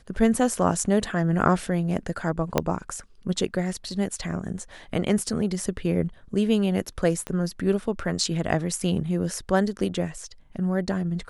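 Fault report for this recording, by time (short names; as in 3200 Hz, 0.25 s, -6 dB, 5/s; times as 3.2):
2.58 pop -6 dBFS
7.27 pop -17 dBFS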